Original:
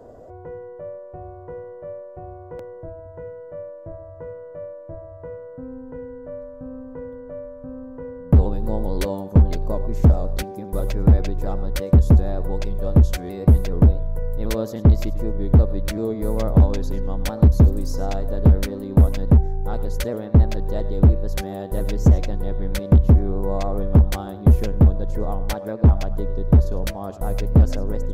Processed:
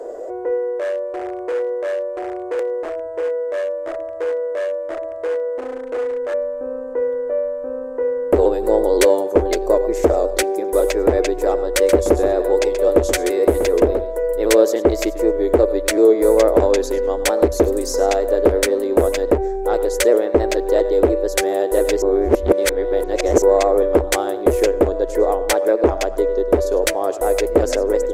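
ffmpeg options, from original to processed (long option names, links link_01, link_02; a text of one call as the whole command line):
ffmpeg -i in.wav -filter_complex "[0:a]asettb=1/sr,asplit=3[link_01][link_02][link_03];[link_01]atrim=end=0.784[link_04];[link_02]atrim=start=0.78:end=6.34,asetpts=PTS-STARTPTS,afade=type=in:duration=0.004:curve=qsin,afade=type=out:start_time=5.556:duration=0.004:curve=qsin,aeval=exprs='0.0282*(abs(mod(val(0)/0.0282+3,4)-2)-1)':channel_layout=same[link_05];[link_03]atrim=start=6.336[link_06];[link_04][link_05]acrossfade=duration=0.004:curve1=hsin:curve2=qsin[link_07];[link_07][link_06]acrossfade=duration=0.004:curve1=qsin:curve2=hsin,asettb=1/sr,asplit=3[link_08][link_09][link_10];[link_08]atrim=end=11.694[link_11];[link_09]atrim=start=11.69:end=14.33,asetpts=PTS-STARTPTS,afade=type=in:duration=0.004:curve=qsin,afade=type=out:start_time=2.636:duration=0.004:curve=qsin,aecho=1:1:129:0.316,atrim=end_sample=116424[link_12];[link_10]atrim=start=14.326[link_13];[link_11][link_12]acrossfade=duration=0.004:curve1=hsin:curve2=qsin[link_14];[link_14][link_13]acrossfade=duration=0.004:curve1=qsin:curve2=hsin,asplit=3[link_15][link_16][link_17];[link_15]atrim=end=22.022[link_18];[link_16]atrim=start=22.018:end=23.422,asetpts=PTS-STARTPTS,areverse[link_19];[link_17]atrim=start=23.418[link_20];[link_18][link_19]acrossfade=duration=0.004:curve1=hsin:curve2=hsin[link_21];[link_21][link_20]acrossfade=duration=0.004:curve1=hsin:curve2=hsin,equalizer=frequency=125:width_type=o:width=1:gain=-10,equalizer=frequency=250:width_type=o:width=1:gain=-5,equalizer=frequency=500:width_type=o:width=1:gain=7,equalizer=frequency=2000:width_type=o:width=1:gain=7,equalizer=frequency=8000:width_type=o:width=1:gain=11,acontrast=48,lowshelf=frequency=230:width_type=q:width=3:gain=-13" out.wav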